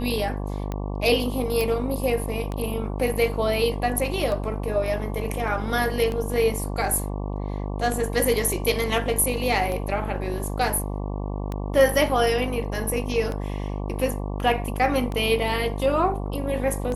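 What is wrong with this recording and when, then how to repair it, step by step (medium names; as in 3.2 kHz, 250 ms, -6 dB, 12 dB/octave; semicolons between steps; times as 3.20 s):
buzz 50 Hz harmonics 23 -29 dBFS
tick 33 1/3 rpm -17 dBFS
1.61 s: pop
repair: de-click; de-hum 50 Hz, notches 23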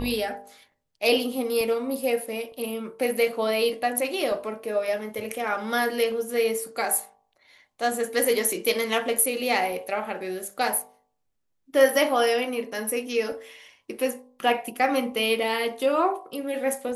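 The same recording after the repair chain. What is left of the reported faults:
nothing left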